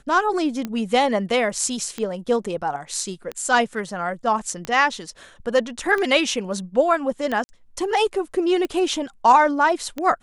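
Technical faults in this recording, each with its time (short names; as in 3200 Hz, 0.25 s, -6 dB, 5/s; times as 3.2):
tick 45 rpm -14 dBFS
7.44–7.49 gap 50 ms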